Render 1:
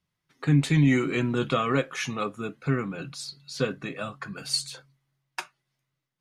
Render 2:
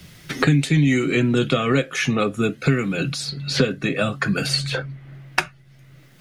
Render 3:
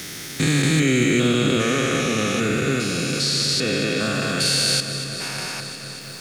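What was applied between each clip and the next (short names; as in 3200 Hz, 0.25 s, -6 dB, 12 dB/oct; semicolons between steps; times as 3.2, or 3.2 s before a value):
bell 1000 Hz -11 dB 0.69 oct; three-band squash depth 100%; gain +7.5 dB
stepped spectrum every 0.4 s; tone controls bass -5 dB, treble +12 dB; echo with dull and thin repeats by turns 0.119 s, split 2000 Hz, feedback 90%, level -11 dB; gain +4 dB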